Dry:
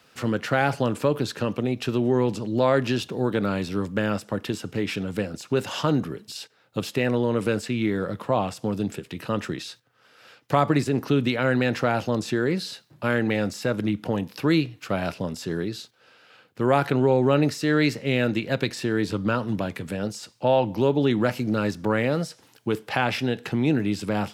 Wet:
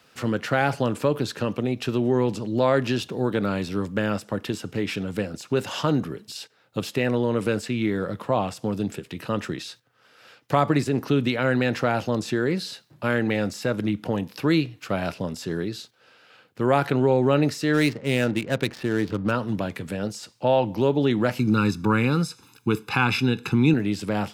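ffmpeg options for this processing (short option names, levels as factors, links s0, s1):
-filter_complex "[0:a]asplit=3[s0][s1][s2];[s0]afade=t=out:st=17.73:d=0.02[s3];[s1]adynamicsmooth=sensitivity=8:basefreq=630,afade=t=in:st=17.73:d=0.02,afade=t=out:st=19.3:d=0.02[s4];[s2]afade=t=in:st=19.3:d=0.02[s5];[s3][s4][s5]amix=inputs=3:normalize=0,asettb=1/sr,asplit=3[s6][s7][s8];[s6]atrim=end=21.394[s9];[s7]atrim=start=21.39:end=23.74,asetpts=PTS-STARTPTS,afade=t=in:d=0.004:c=qsin,afade=t=out:st=2.346:d=0.004:c=qsin,aecho=1:1:0.8:0.96,atrim=end_sample=103635[s10];[s8]atrim=start=23.736[s11];[s9][s10]acrossfade=d=0.004:c1=hsin:c2=qsin[s12];[s12][s11]acrossfade=d=0.004:c1=qsin:c2=hsin"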